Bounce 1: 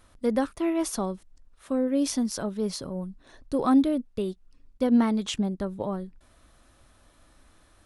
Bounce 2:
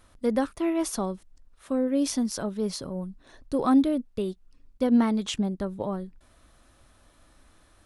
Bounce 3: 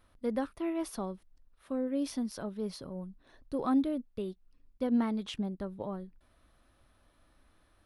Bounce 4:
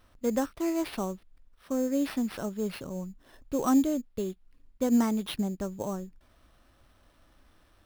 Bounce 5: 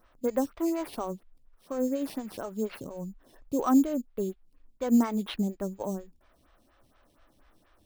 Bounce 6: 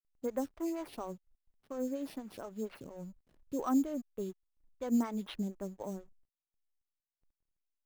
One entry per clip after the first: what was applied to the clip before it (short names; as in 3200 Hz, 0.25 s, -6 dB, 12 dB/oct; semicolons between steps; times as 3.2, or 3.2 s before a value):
de-esser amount 35%
bell 7200 Hz -10.5 dB 0.73 oct; gain -7.5 dB
sample-rate reducer 7000 Hz, jitter 0%; gain +4.5 dB
photocell phaser 4.2 Hz; gain +2 dB
backlash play -46.5 dBFS; gain -7.5 dB